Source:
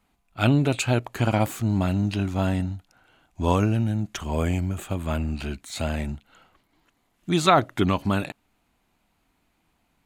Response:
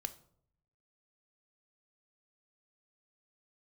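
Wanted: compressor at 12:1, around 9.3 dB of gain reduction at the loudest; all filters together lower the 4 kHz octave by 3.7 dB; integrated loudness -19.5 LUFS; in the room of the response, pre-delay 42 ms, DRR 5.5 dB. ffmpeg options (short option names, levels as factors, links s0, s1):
-filter_complex "[0:a]equalizer=f=4000:t=o:g=-4.5,acompressor=threshold=0.0708:ratio=12,asplit=2[s0][s1];[1:a]atrim=start_sample=2205,adelay=42[s2];[s1][s2]afir=irnorm=-1:irlink=0,volume=0.631[s3];[s0][s3]amix=inputs=2:normalize=0,volume=2.82"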